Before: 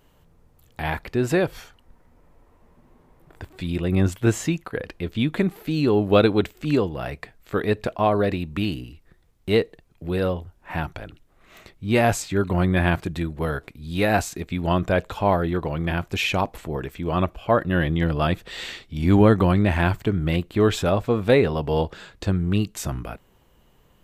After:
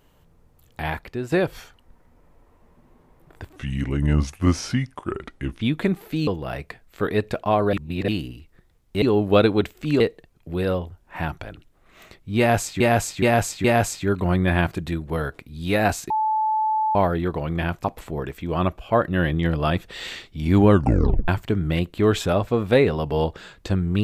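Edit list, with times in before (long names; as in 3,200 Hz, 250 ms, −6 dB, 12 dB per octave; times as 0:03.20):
0:00.82–0:01.32: fade out linear, to −10.5 dB
0:03.56–0:05.16: play speed 78%
0:05.82–0:06.80: move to 0:09.55
0:08.26–0:08.61: reverse
0:11.93–0:12.35: repeat, 4 plays
0:14.39–0:15.24: beep over 869 Hz −18.5 dBFS
0:16.13–0:16.41: remove
0:19.25: tape stop 0.60 s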